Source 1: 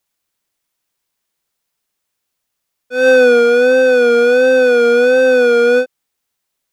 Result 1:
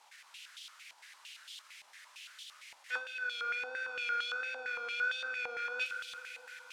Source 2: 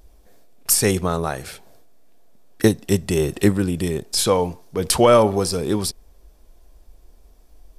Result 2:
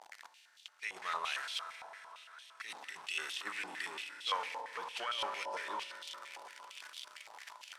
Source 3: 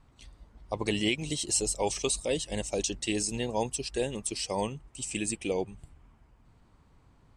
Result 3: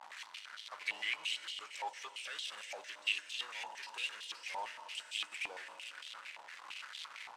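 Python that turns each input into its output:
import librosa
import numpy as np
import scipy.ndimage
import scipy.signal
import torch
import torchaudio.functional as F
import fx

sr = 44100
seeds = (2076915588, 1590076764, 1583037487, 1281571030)

p1 = x + 0.5 * 10.0 ** (-26.0 / 20.0) * np.sign(x)
p2 = np.diff(p1, prepend=0.0)
p3 = fx.over_compress(p2, sr, threshold_db=-33.0, ratio=-0.5)
p4 = fx.quant_float(p3, sr, bits=2)
p5 = fx.air_absorb(p4, sr, metres=51.0)
p6 = p5 + fx.echo_wet_highpass(p5, sr, ms=536, feedback_pct=78, hz=1500.0, wet_db=-16, dry=0)
p7 = fx.rev_fdn(p6, sr, rt60_s=4.0, lf_ratio=1.0, hf_ratio=0.95, size_ms=10.0, drr_db=6.5)
p8 = fx.filter_held_bandpass(p7, sr, hz=8.8, low_hz=840.0, high_hz=3300.0)
y = p8 * 10.0 ** (7.5 / 20.0)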